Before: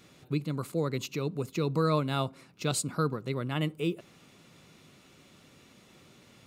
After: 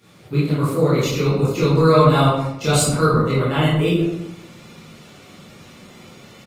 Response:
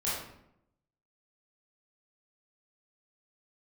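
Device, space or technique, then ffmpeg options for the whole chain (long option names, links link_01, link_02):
far-field microphone of a smart speaker: -filter_complex "[0:a]asplit=2[link_01][link_02];[link_02]adelay=127,lowpass=frequency=1400:poles=1,volume=-10.5dB,asplit=2[link_03][link_04];[link_04]adelay=127,lowpass=frequency=1400:poles=1,volume=0.2,asplit=2[link_05][link_06];[link_06]adelay=127,lowpass=frequency=1400:poles=1,volume=0.2[link_07];[link_01][link_03][link_05][link_07]amix=inputs=4:normalize=0[link_08];[1:a]atrim=start_sample=2205[link_09];[link_08][link_09]afir=irnorm=-1:irlink=0,highpass=95,dynaudnorm=framelen=170:gausssize=3:maxgain=4dB,volume=3dB" -ar 48000 -c:a libopus -b:a 24k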